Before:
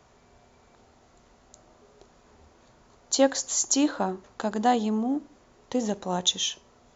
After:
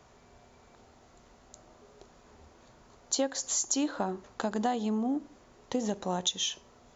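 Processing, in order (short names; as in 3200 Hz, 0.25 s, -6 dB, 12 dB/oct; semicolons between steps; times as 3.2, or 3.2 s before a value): compressor 4:1, threshold -27 dBFS, peak gain reduction 11 dB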